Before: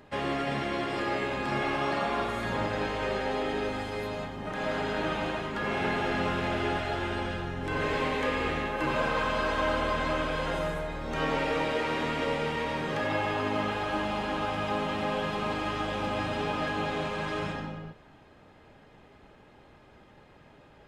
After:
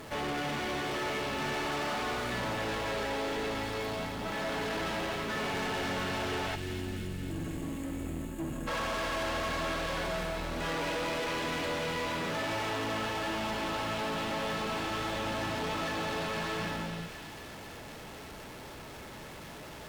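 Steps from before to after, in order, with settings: jump at every zero crossing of -41.5 dBFS; time-frequency box 6.88–9.11 s, 350–6200 Hz -20 dB; wide varispeed 1.05×; valve stage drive 33 dB, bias 0.6; on a send: feedback echo behind a high-pass 254 ms, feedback 69%, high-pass 2 kHz, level -6.5 dB; on the sum: trim +2 dB

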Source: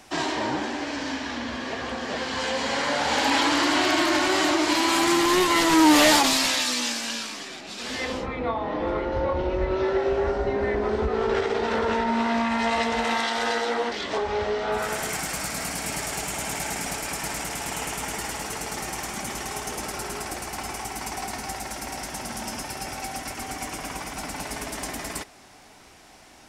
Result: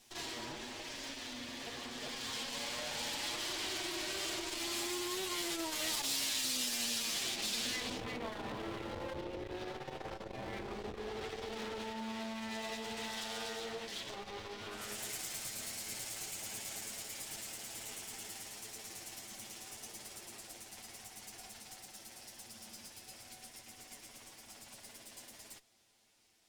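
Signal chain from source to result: comb filter that takes the minimum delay 8.7 ms; Doppler pass-by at 7.33 s, 12 m/s, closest 4 m; FFT filter 480 Hz 0 dB, 1.3 kHz -4 dB, 3.3 kHz +4 dB, 5.8 kHz +2 dB; compression 5:1, threshold -51 dBFS, peak gain reduction 19.5 dB; treble shelf 3.9 kHz +6.5 dB; transformer saturation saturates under 510 Hz; trim +12 dB

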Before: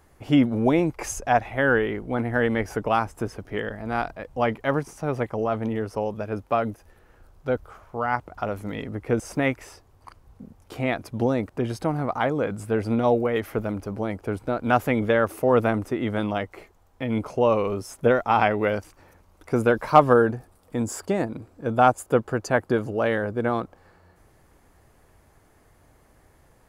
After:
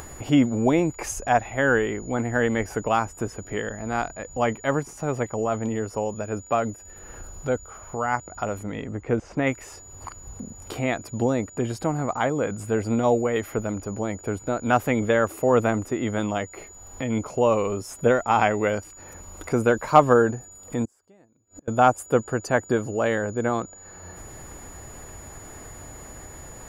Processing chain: upward compressor, threshold -28 dBFS; whistle 6.9 kHz -44 dBFS; 8.63–9.47 s: distance through air 170 m; 20.85–21.68 s: inverted gate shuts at -30 dBFS, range -31 dB

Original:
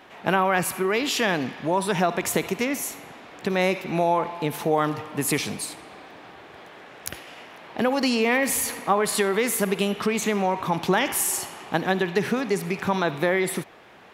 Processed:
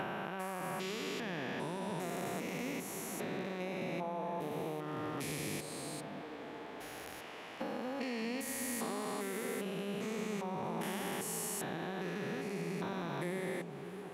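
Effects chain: spectrogram pixelated in time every 400 ms; compression, threshold -32 dBFS, peak gain reduction 10 dB; repeats whose band climbs or falls 604 ms, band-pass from 200 Hz, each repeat 0.7 oct, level -3.5 dB; trim -4.5 dB

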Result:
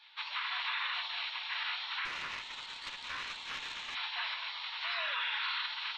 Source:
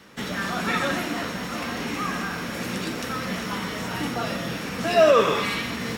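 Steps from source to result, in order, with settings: Chebyshev band-pass 1–4.1 kHz, order 4; spectral gate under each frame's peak -10 dB weak; peak limiter -30.5 dBFS, peak gain reduction 10.5 dB; 2.05–3.95 s: valve stage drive 33 dB, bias 0.7; on a send: reverberation RT60 0.20 s, pre-delay 3 ms, DRR 16.5 dB; on the sum: trim +4 dB

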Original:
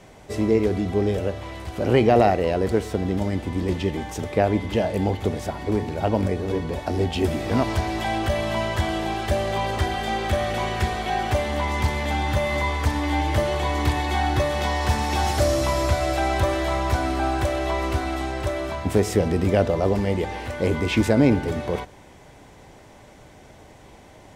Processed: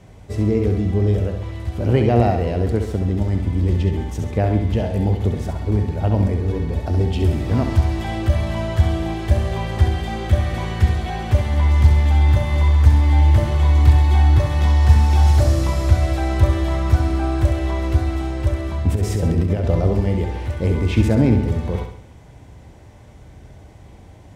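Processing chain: peaking EQ 72 Hz +15 dB 2.7 oct; 18.88–19.81 s: compressor with a negative ratio -13 dBFS, ratio -0.5; on a send: flutter echo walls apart 11.5 m, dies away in 0.59 s; on the sum: trim -4.5 dB

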